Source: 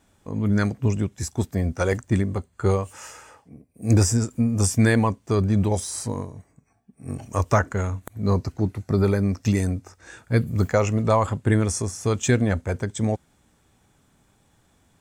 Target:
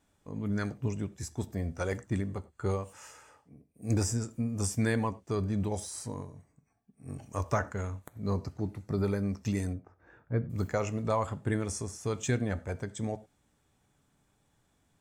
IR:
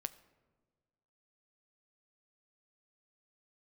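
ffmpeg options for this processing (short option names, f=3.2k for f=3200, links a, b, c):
-filter_complex "[0:a]asettb=1/sr,asplit=3[a][b][c];[a]atrim=end=9.734[d];[b]atrim=start=9.73:end=10.5,asetpts=PTS-STARTPTS,afade=t=in:d=0.004:c=qsin,afade=t=out:st=0.766:d=0.004:c=qsin,lowpass=1.3k[e];[c]atrim=start=10.496[f];[d][e]acrossfade=d=0.004:c1=hsin:c2=qsin[g];[g][f]acrossfade=d=0.004:c1=qsin:c2=hsin[h];[1:a]atrim=start_sample=2205,afade=t=out:st=0.17:d=0.01,atrim=end_sample=7938,asetrate=48510,aresample=44100[i];[h][i]afir=irnorm=-1:irlink=0,volume=-6.5dB"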